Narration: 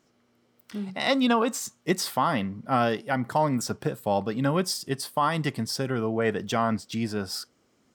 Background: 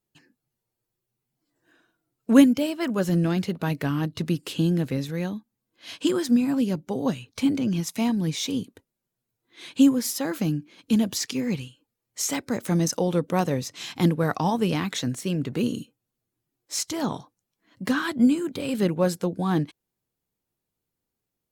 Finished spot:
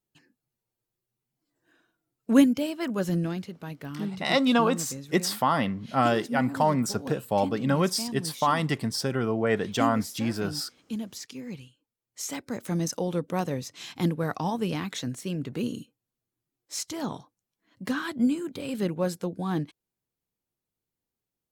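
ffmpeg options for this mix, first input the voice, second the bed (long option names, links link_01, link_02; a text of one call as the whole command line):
ffmpeg -i stem1.wav -i stem2.wav -filter_complex "[0:a]adelay=3250,volume=0.5dB[link_01];[1:a]volume=3.5dB,afade=type=out:start_time=3.1:duration=0.4:silence=0.375837,afade=type=in:start_time=11.43:duration=1.43:silence=0.446684[link_02];[link_01][link_02]amix=inputs=2:normalize=0" out.wav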